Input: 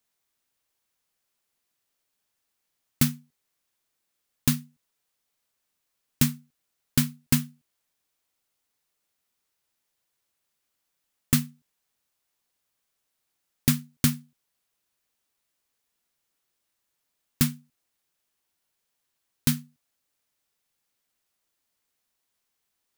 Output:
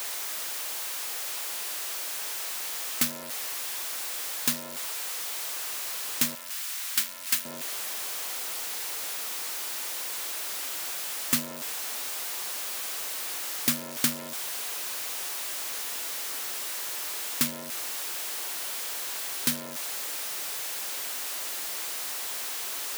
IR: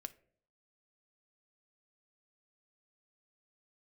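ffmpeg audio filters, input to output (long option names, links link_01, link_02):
-af "aeval=exprs='val(0)+0.5*0.0422*sgn(val(0))':channel_layout=same,asetnsamples=nb_out_samples=441:pad=0,asendcmd='6.35 highpass f 1200;7.45 highpass f 390',highpass=470"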